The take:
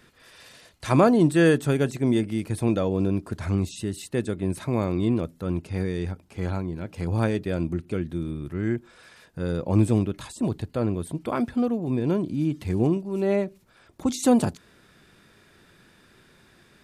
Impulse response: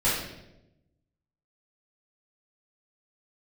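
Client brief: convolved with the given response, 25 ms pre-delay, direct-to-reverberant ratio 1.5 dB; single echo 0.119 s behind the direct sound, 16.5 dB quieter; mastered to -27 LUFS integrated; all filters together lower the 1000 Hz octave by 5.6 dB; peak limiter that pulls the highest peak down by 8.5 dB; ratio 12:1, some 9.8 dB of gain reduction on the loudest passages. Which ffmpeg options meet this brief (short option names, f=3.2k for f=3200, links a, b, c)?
-filter_complex "[0:a]equalizer=f=1k:t=o:g=-8,acompressor=threshold=-24dB:ratio=12,alimiter=limit=-23dB:level=0:latency=1,aecho=1:1:119:0.15,asplit=2[a][b];[1:a]atrim=start_sample=2205,adelay=25[c];[b][c]afir=irnorm=-1:irlink=0,volume=-14.5dB[d];[a][d]amix=inputs=2:normalize=0,volume=2.5dB"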